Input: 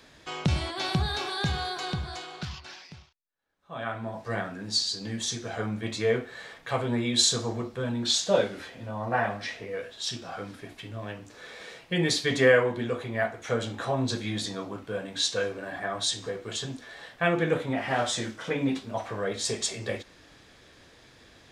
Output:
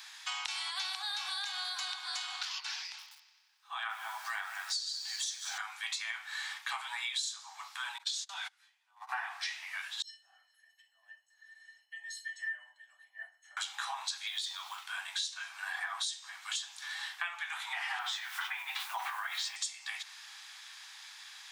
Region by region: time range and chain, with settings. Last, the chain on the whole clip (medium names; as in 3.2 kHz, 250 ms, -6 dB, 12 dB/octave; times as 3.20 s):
2.79–5.58 s: multi-head delay 92 ms, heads first and second, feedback 58%, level -18 dB + bit-crushed delay 194 ms, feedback 35%, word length 8-bit, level -12.5 dB
7.98–9.09 s: high-pass 280 Hz 6 dB/octave + gate -33 dBFS, range -29 dB + compression 3:1, threshold -28 dBFS
10.02–13.57 s: tilt EQ -3 dB/octave + feedback comb 600 Hz, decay 0.15 s, harmonics odd, mix 100%
14.27–14.84 s: peaking EQ 3.4 kHz +8 dB 0.61 oct + compression 2.5:1, threshold -33 dBFS + short-mantissa float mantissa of 4-bit
17.99–19.56 s: low-pass 2.8 kHz + word length cut 10-bit, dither none + level flattener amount 50%
whole clip: steep high-pass 780 Hz 96 dB/octave; treble shelf 2 kHz +10.5 dB; compression 12:1, threshold -34 dBFS